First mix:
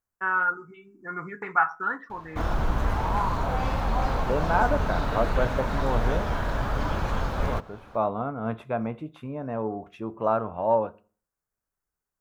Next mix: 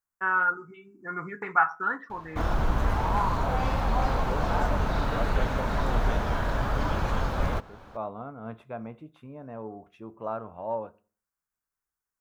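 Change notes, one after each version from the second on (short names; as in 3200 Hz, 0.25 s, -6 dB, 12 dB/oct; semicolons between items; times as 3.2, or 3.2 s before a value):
second voice -9.0 dB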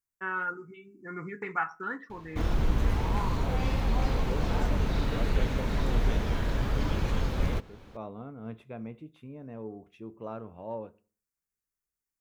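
master: add band shelf 970 Hz -8.5 dB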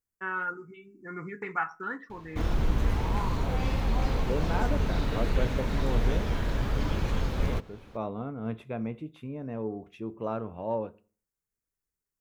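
second voice +6.5 dB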